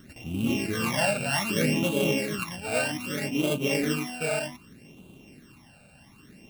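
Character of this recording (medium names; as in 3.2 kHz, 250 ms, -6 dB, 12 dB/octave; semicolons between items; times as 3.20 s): a buzz of ramps at a fixed pitch in blocks of 16 samples; phasing stages 12, 0.64 Hz, lowest notch 330–1800 Hz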